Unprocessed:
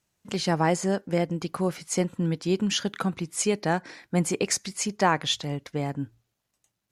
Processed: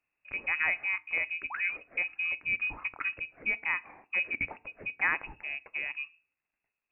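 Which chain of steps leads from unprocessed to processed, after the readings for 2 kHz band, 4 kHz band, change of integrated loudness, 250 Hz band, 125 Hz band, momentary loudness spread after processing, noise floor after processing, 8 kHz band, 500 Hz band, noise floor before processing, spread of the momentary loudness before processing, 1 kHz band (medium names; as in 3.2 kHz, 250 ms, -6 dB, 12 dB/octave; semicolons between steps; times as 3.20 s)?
+6.5 dB, -17.0 dB, -4.5 dB, -27.0 dB, -27.5 dB, 9 LU, under -85 dBFS, under -40 dB, -23.0 dB, -81 dBFS, 7 LU, -12.5 dB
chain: painted sound fall, 1.50–1.77 s, 210–2000 Hz -32 dBFS; frequency inversion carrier 2.7 kHz; FDN reverb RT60 0.39 s, low-frequency decay 1.4×, high-frequency decay 0.9×, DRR 16.5 dB; trim -6.5 dB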